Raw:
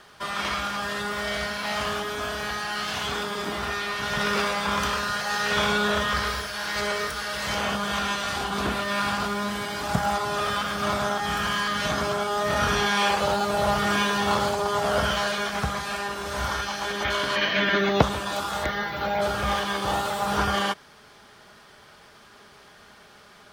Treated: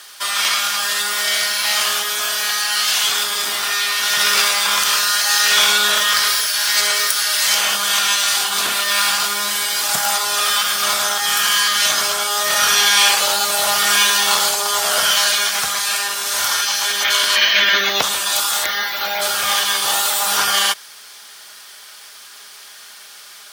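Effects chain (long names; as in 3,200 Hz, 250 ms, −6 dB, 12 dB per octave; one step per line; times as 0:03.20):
first difference
boost into a limiter +21.5 dB
level −1 dB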